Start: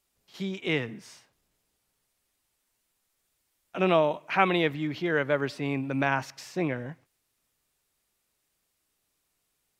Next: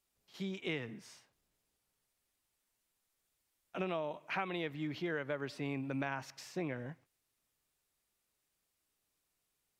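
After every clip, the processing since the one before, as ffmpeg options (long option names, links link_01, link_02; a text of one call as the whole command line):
ffmpeg -i in.wav -af "acompressor=threshold=-27dB:ratio=6,volume=-6.5dB" out.wav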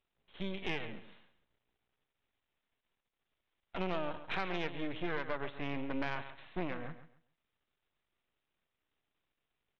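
ffmpeg -i in.wav -af "aresample=8000,aeval=exprs='max(val(0),0)':channel_layout=same,aresample=44100,aecho=1:1:136|272|408:0.224|0.0515|0.0118,asoftclip=type=tanh:threshold=-26.5dB,volume=5.5dB" out.wav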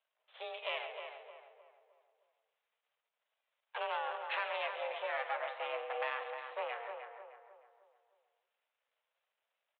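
ffmpeg -i in.wav -filter_complex "[0:a]flanger=delay=2.2:depth=8.5:regen=75:speed=0.3:shape=sinusoidal,asplit=2[link_01][link_02];[link_02]adelay=308,lowpass=frequency=1600:poles=1,volume=-6dB,asplit=2[link_03][link_04];[link_04]adelay=308,lowpass=frequency=1600:poles=1,volume=0.43,asplit=2[link_05][link_06];[link_06]adelay=308,lowpass=frequency=1600:poles=1,volume=0.43,asplit=2[link_07][link_08];[link_08]adelay=308,lowpass=frequency=1600:poles=1,volume=0.43,asplit=2[link_09][link_10];[link_10]adelay=308,lowpass=frequency=1600:poles=1,volume=0.43[link_11];[link_01][link_03][link_05][link_07][link_09][link_11]amix=inputs=6:normalize=0,highpass=frequency=270:width_type=q:width=0.5412,highpass=frequency=270:width_type=q:width=1.307,lowpass=frequency=3300:width_type=q:width=0.5176,lowpass=frequency=3300:width_type=q:width=0.7071,lowpass=frequency=3300:width_type=q:width=1.932,afreqshift=220,volume=5dB" out.wav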